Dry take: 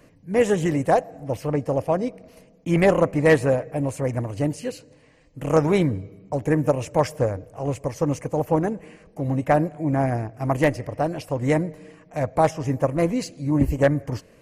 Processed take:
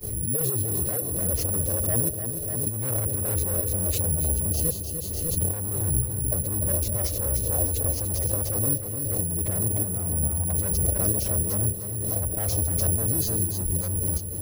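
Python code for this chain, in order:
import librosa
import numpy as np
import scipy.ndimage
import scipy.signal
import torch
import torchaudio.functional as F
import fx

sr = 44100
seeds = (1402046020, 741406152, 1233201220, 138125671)

p1 = fx.fade_in_head(x, sr, length_s=0.74)
p2 = scipy.signal.sosfilt(scipy.signal.butter(2, 7200.0, 'lowpass', fs=sr, output='sos'), p1)
p3 = fx.band_shelf(p2, sr, hz=1700.0, db=-13.0, octaves=1.7)
p4 = 10.0 ** (-24.0 / 20.0) * np.tanh(p3 / 10.0 ** (-24.0 / 20.0))
p5 = p3 + (p4 * librosa.db_to_amplitude(-10.5))
p6 = fx.pitch_keep_formants(p5, sr, semitones=-7.5)
p7 = (np.kron(p6[::4], np.eye(4)[0]) * 4)[:len(p6)]
p8 = fx.low_shelf_res(p7, sr, hz=160.0, db=7.5, q=1.5)
p9 = np.clip(p8, -10.0 ** (-7.5 / 20.0), 10.0 ** (-7.5 / 20.0))
p10 = fx.over_compress(p9, sr, threshold_db=-19.0, ratio=-0.5)
p11 = p10 + fx.echo_feedback(p10, sr, ms=299, feedback_pct=35, wet_db=-7, dry=0)
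p12 = fx.pre_swell(p11, sr, db_per_s=25.0)
y = p12 * librosa.db_to_amplitude(-6.5)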